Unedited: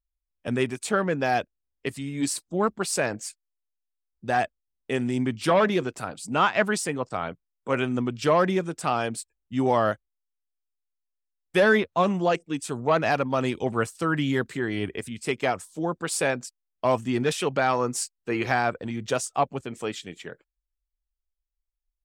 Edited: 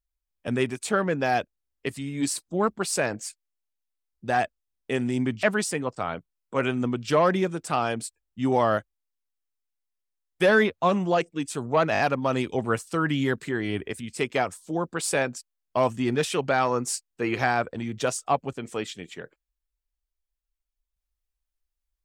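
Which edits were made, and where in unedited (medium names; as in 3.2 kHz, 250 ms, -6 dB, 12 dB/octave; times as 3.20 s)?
5.43–6.57 s: delete
13.07 s: stutter 0.02 s, 4 plays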